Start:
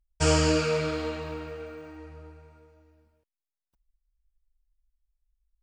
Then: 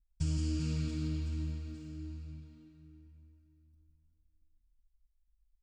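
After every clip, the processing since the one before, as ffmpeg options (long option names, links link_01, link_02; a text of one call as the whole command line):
ffmpeg -i in.wav -filter_complex "[0:a]firequalizer=gain_entry='entry(270,0);entry(420,-29);entry(3600,-13)':delay=0.05:min_phase=1,acompressor=threshold=-30dB:ratio=5,asplit=2[link_01][link_02];[link_02]aecho=0:1:170|391|678.3|1052|1537:0.631|0.398|0.251|0.158|0.1[link_03];[link_01][link_03]amix=inputs=2:normalize=0" out.wav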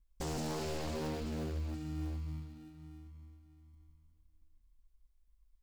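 ffmpeg -i in.wav -filter_complex "[0:a]asplit=2[link_01][link_02];[link_02]acrusher=samples=41:mix=1:aa=0.000001,volume=-9dB[link_03];[link_01][link_03]amix=inputs=2:normalize=0,aeval=exprs='0.0168*(abs(mod(val(0)/0.0168+3,4)-2)-1)':channel_layout=same,volume=2.5dB" out.wav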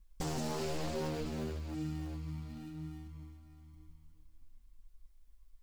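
ffmpeg -i in.wav -af "acompressor=threshold=-43dB:ratio=6,flanger=delay=5.4:depth=2.7:regen=29:speed=1:shape=sinusoidal,volume=11.5dB" out.wav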